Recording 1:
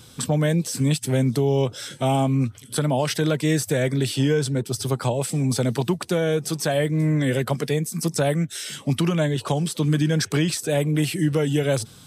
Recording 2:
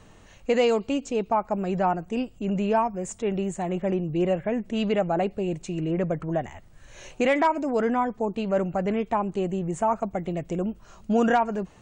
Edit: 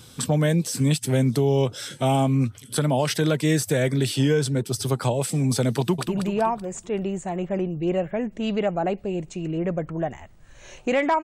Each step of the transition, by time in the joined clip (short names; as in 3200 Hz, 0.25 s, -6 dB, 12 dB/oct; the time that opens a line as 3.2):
recording 1
5.79–6.06 echo throw 0.19 s, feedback 50%, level -6.5 dB
6.06 switch to recording 2 from 2.39 s